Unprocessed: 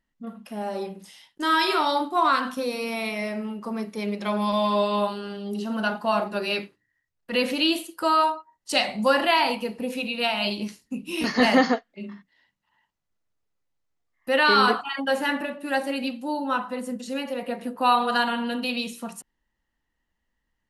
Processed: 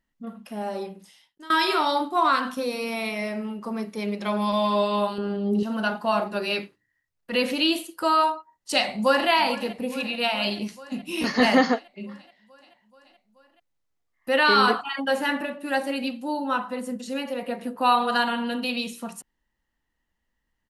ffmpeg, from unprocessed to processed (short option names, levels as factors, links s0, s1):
-filter_complex "[0:a]asettb=1/sr,asplit=3[s0][s1][s2];[s0]atrim=end=5.184[s3];[s1]atrim=start=5.18:end=5.63,asetpts=PTS-STARTPTS,afade=t=in:d=0.004:c=qsin,afade=t=out:st=0.446:d=0.004:c=qsin,tiltshelf=f=1400:g=8[s4];[s2]atrim=start=5.626[s5];[s3][s4]acrossfade=d=0.004:c1=hsin:c2=qsin[s6];[s6][s5]acrossfade=d=0.004:c1=qsin:c2=hsin,asplit=2[s7][s8];[s8]afade=t=in:st=8.71:d=0.01,afade=t=out:st=9.29:d=0.01,aecho=0:1:430|860|1290|1720|2150|2580|3010|3440|3870|4300:0.149624|0.112218|0.0841633|0.0631224|0.0473418|0.0355064|0.0266298|0.0199723|0.0149793|0.0112344[s9];[s7][s9]amix=inputs=2:normalize=0,asplit=2[s10][s11];[s10]atrim=end=1.5,asetpts=PTS-STARTPTS,afade=t=out:st=0.69:d=0.81:silence=0.0794328[s12];[s11]atrim=start=1.5,asetpts=PTS-STARTPTS,afade=t=in:d=0.004:c=hsin:silence=0.0794328[s13];[s12][s13]concat=n=2:v=0:a=1"